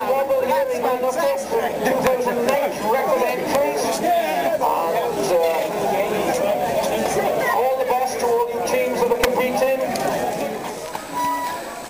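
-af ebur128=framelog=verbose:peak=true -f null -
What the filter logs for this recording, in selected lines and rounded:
Integrated loudness:
  I:         -20.4 LUFS
  Threshold: -30.4 LUFS
Loudness range:
  LRA:         1.2 LU
  Threshold: -40.2 LUFS
  LRA low:   -21.0 LUFS
  LRA high:  -19.8 LUFS
True peak:
  Peak:       -6.0 dBFS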